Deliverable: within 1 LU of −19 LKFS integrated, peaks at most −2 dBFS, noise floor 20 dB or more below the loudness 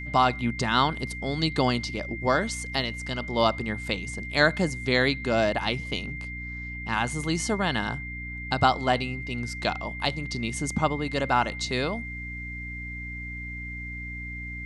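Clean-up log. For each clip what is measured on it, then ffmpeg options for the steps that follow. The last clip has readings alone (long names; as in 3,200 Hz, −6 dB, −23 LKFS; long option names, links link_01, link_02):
mains hum 60 Hz; hum harmonics up to 300 Hz; level of the hum −36 dBFS; interfering tone 2,100 Hz; level of the tone −36 dBFS; integrated loudness −27.5 LKFS; sample peak −6.5 dBFS; target loudness −19.0 LKFS
→ -af "bandreject=frequency=60:width_type=h:width=6,bandreject=frequency=120:width_type=h:width=6,bandreject=frequency=180:width_type=h:width=6,bandreject=frequency=240:width_type=h:width=6,bandreject=frequency=300:width_type=h:width=6"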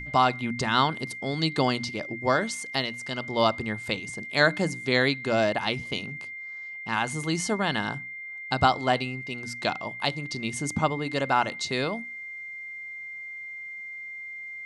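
mains hum none found; interfering tone 2,100 Hz; level of the tone −36 dBFS
→ -af "bandreject=frequency=2100:width=30"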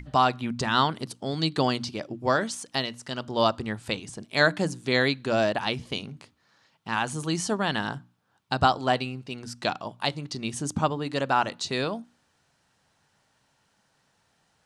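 interfering tone none found; integrated loudness −27.0 LKFS; sample peak −6.5 dBFS; target loudness −19.0 LKFS
→ -af "volume=8dB,alimiter=limit=-2dB:level=0:latency=1"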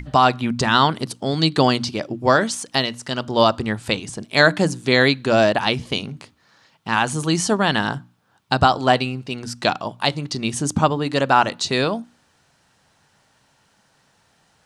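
integrated loudness −19.5 LKFS; sample peak −2.0 dBFS; background noise floor −62 dBFS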